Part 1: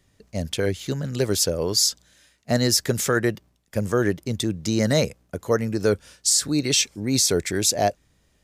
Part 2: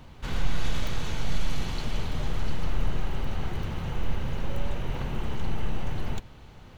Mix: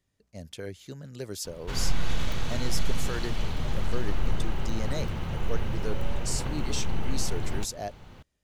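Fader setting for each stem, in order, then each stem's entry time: -14.5, 0.0 dB; 0.00, 1.45 s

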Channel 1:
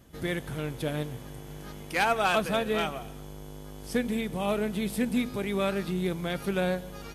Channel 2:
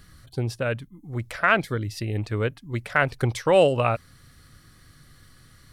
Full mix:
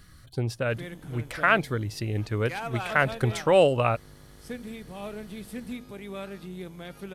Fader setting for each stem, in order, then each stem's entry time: -9.5, -1.5 dB; 0.55, 0.00 s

